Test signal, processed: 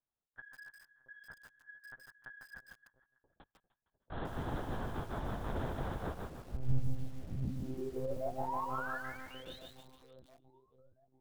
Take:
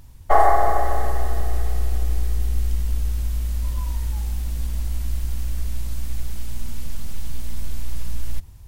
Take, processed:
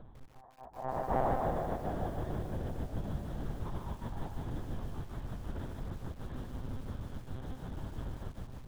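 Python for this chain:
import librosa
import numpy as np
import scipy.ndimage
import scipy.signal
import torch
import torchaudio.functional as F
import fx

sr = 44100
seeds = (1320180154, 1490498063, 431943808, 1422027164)

y = scipy.signal.sosfilt(scipy.signal.butter(4, 100.0, 'highpass', fs=sr, output='sos'), x)
y = fx.dynamic_eq(y, sr, hz=170.0, q=1.3, threshold_db=-40.0, ratio=4.0, max_db=5)
y = fx.over_compress(y, sr, threshold_db=-30.0, ratio=-0.5)
y = fx.step_gate(y, sr, bpm=179, pattern='xxx.xx.x.xxx.', floor_db=-24.0, edge_ms=4.5)
y = scipy.signal.lfilter(np.full(18, 1.0 / 18), 1.0, y)
y = 10.0 ** (-18.5 / 20.0) * np.tanh(y / 10.0 ** (-18.5 / 20.0))
y = fx.cheby_harmonics(y, sr, harmonics=(8,), levels_db=(-44,), full_scale_db=-19.5)
y = fx.doubler(y, sr, ms=22.0, db=-6)
y = fx.echo_split(y, sr, split_hz=680.0, low_ms=689, high_ms=153, feedback_pct=52, wet_db=-11)
y = fx.lpc_monotone(y, sr, seeds[0], pitch_hz=130.0, order=8)
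y = fx.echo_crushed(y, sr, ms=150, feedback_pct=35, bits=9, wet_db=-3.5)
y = F.gain(torch.from_numpy(y), -3.0).numpy()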